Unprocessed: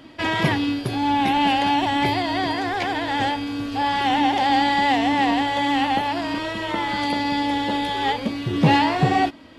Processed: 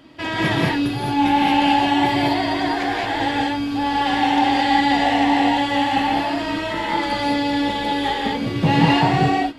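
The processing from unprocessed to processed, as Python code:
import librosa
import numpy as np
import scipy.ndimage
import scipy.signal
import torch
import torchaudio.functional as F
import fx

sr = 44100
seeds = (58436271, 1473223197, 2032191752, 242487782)

y = fx.rev_gated(x, sr, seeds[0], gate_ms=240, shape='rising', drr_db=-3.5)
y = y * librosa.db_to_amplitude(-3.0)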